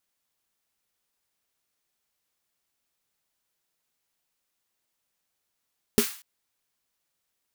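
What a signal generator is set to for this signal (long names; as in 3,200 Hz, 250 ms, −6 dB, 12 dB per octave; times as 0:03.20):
synth snare length 0.24 s, tones 230 Hz, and 410 Hz, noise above 1,100 Hz, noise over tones −8 dB, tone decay 0.10 s, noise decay 0.45 s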